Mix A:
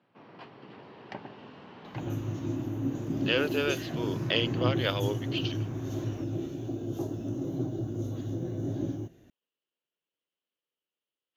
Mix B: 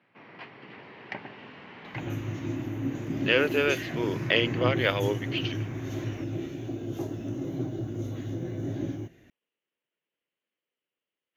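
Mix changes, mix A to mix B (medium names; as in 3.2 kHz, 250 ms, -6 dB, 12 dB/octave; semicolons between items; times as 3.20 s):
speech: add tilt shelf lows +5 dB, about 1.4 kHz; master: add peaking EQ 2.1 kHz +12 dB 0.81 oct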